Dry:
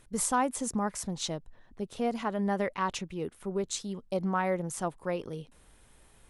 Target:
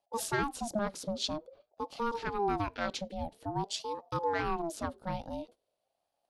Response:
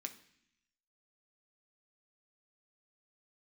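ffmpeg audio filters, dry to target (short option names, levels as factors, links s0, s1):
-filter_complex "[0:a]agate=range=0.0891:threshold=0.00282:ratio=16:detection=peak,acrossover=split=590|2600[s0][s1][s2];[s1]adynamicsmooth=sensitivity=3.5:basefreq=1500[s3];[s0][s3][s2]amix=inputs=3:normalize=0,equalizer=f=125:t=o:w=1:g=12,equalizer=f=4000:t=o:w=1:g=11,equalizer=f=8000:t=o:w=1:g=-7,asplit=2[s4][s5];[1:a]atrim=start_sample=2205,atrim=end_sample=4410[s6];[s5][s6]afir=irnorm=-1:irlink=0,volume=0.266[s7];[s4][s7]amix=inputs=2:normalize=0,deesser=0.35,aeval=exprs='val(0)*sin(2*PI*540*n/s+540*0.3/0.49*sin(2*PI*0.49*n/s))':c=same,volume=0.708"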